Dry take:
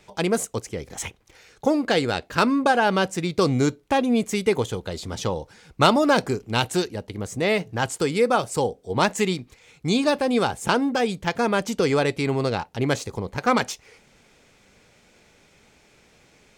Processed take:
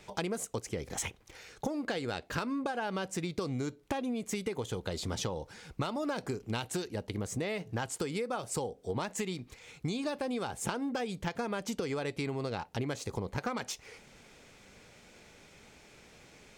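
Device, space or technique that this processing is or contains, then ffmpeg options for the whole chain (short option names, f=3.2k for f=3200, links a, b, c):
serial compression, leveller first: -af "acompressor=threshold=-21dB:ratio=3,acompressor=threshold=-32dB:ratio=6"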